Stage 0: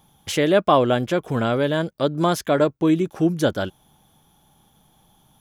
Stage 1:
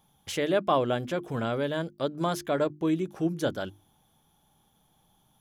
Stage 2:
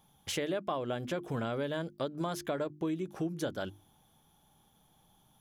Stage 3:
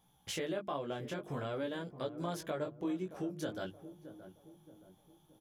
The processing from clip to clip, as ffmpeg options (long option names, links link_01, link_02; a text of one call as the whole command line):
ffmpeg -i in.wav -af "bandreject=frequency=50:width_type=h:width=6,bandreject=frequency=100:width_type=h:width=6,bandreject=frequency=150:width_type=h:width=6,bandreject=frequency=200:width_type=h:width=6,bandreject=frequency=250:width_type=h:width=6,bandreject=frequency=300:width_type=h:width=6,bandreject=frequency=350:width_type=h:width=6,volume=-8dB" out.wav
ffmpeg -i in.wav -af "acompressor=threshold=-31dB:ratio=6" out.wav
ffmpeg -i in.wav -filter_complex "[0:a]flanger=delay=16:depth=5.9:speed=0.5,asplit=2[link_01][link_02];[link_02]adelay=623,lowpass=frequency=820:poles=1,volume=-12dB,asplit=2[link_03][link_04];[link_04]adelay=623,lowpass=frequency=820:poles=1,volume=0.48,asplit=2[link_05][link_06];[link_06]adelay=623,lowpass=frequency=820:poles=1,volume=0.48,asplit=2[link_07][link_08];[link_08]adelay=623,lowpass=frequency=820:poles=1,volume=0.48,asplit=2[link_09][link_10];[link_10]adelay=623,lowpass=frequency=820:poles=1,volume=0.48[link_11];[link_01][link_03][link_05][link_07][link_09][link_11]amix=inputs=6:normalize=0,volume=-1dB" out.wav